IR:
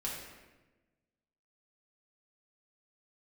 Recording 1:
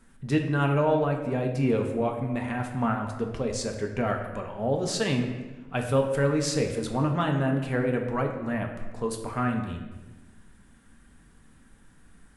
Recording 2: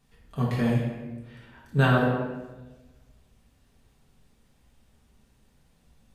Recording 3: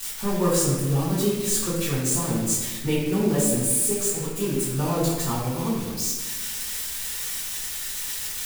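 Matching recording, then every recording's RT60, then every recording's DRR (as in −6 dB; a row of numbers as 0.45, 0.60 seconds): 2; 1.2, 1.2, 1.2 seconds; 2.5, −5.5, −13.5 decibels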